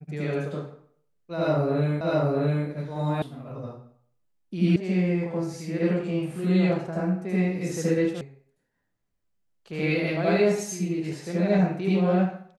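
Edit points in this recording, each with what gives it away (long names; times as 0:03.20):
0:02.01: the same again, the last 0.66 s
0:03.22: cut off before it has died away
0:04.76: cut off before it has died away
0:08.21: cut off before it has died away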